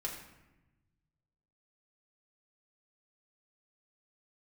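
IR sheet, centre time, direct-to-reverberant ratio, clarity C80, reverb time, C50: 34 ms, −2.5 dB, 7.5 dB, 1.0 s, 5.5 dB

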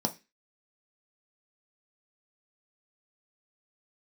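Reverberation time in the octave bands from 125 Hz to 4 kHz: 0.30, 0.30, 0.25, 0.20, 0.35, 0.30 seconds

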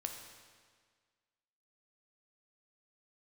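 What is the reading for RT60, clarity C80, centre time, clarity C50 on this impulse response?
1.7 s, 6.5 dB, 42 ms, 5.0 dB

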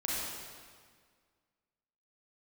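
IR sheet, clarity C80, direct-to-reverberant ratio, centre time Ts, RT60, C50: −1.0 dB, −6.5 dB, 130 ms, 1.8 s, −3.5 dB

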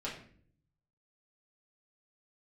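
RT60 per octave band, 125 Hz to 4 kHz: 1.2, 0.85, 0.60, 0.45, 0.50, 0.40 seconds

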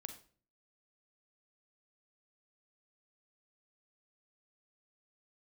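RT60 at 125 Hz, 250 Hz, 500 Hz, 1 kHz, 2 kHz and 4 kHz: 0.70, 0.60, 0.50, 0.40, 0.40, 0.35 seconds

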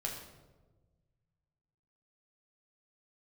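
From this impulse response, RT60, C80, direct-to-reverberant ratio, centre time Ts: 1.3 s, 7.5 dB, −2.0 dB, 38 ms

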